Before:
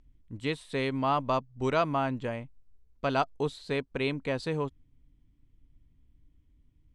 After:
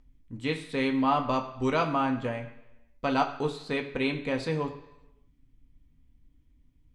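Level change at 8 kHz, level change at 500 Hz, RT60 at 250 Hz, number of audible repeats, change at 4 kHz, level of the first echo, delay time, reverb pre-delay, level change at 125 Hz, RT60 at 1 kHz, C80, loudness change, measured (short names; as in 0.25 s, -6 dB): +1.5 dB, 0.0 dB, 0.90 s, none, +1.5 dB, none, none, 3 ms, -0.5 dB, 1.0 s, 13.0 dB, +2.0 dB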